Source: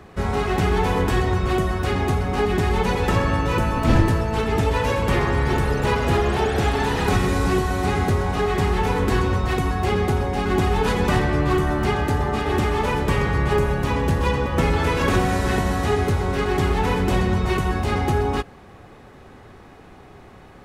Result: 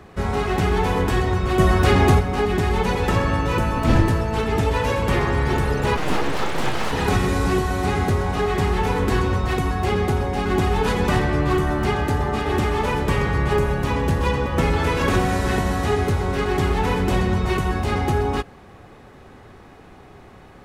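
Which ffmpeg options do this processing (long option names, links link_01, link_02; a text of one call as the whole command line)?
ffmpeg -i in.wav -filter_complex "[0:a]asplit=3[link_01][link_02][link_03];[link_01]afade=type=out:start_time=1.58:duration=0.02[link_04];[link_02]acontrast=82,afade=type=in:start_time=1.58:duration=0.02,afade=type=out:start_time=2.19:duration=0.02[link_05];[link_03]afade=type=in:start_time=2.19:duration=0.02[link_06];[link_04][link_05][link_06]amix=inputs=3:normalize=0,asplit=3[link_07][link_08][link_09];[link_07]afade=type=out:start_time=5.96:duration=0.02[link_10];[link_08]aeval=exprs='abs(val(0))':channel_layout=same,afade=type=in:start_time=5.96:duration=0.02,afade=type=out:start_time=6.91:duration=0.02[link_11];[link_09]afade=type=in:start_time=6.91:duration=0.02[link_12];[link_10][link_11][link_12]amix=inputs=3:normalize=0" out.wav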